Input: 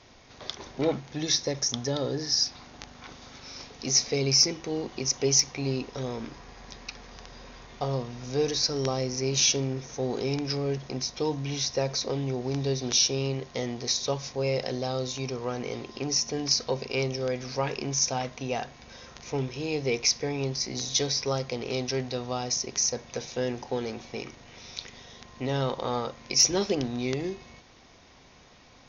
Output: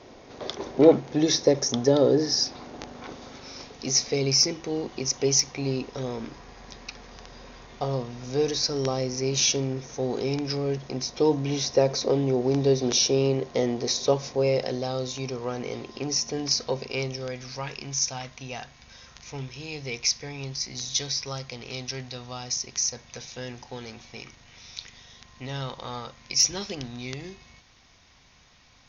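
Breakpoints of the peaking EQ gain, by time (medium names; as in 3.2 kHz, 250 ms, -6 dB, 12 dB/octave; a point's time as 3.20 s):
peaking EQ 410 Hz 2.3 oct
2.99 s +12 dB
3.88 s +2 dB
10.91 s +2 dB
11.31 s +8.5 dB
14.21 s +8.5 dB
14.87 s +1 dB
16.72 s +1 dB
17.68 s -10 dB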